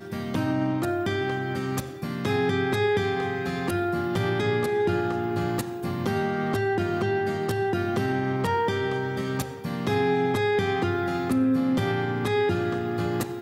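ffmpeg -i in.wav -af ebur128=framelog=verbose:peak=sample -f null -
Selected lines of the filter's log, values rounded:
Integrated loudness:
  I:         -26.1 LUFS
  Threshold: -36.1 LUFS
Loudness range:
  LRA:         1.8 LU
  Threshold: -46.0 LUFS
  LRA low:   -26.6 LUFS
  LRA high:  -24.8 LUFS
Sample peak:
  Peak:      -12.7 dBFS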